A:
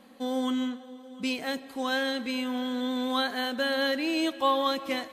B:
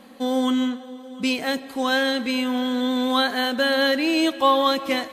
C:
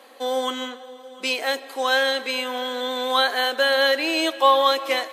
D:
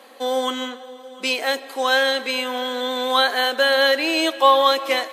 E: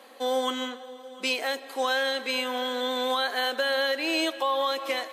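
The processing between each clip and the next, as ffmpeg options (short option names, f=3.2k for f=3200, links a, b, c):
-af "acontrast=88"
-af "highpass=f=400:w=0.5412,highpass=f=400:w=1.3066,volume=2dB"
-af "equalizer=f=210:t=o:w=0.41:g=4,volume=2dB"
-af "alimiter=limit=-12dB:level=0:latency=1:release=267,volume=-4dB"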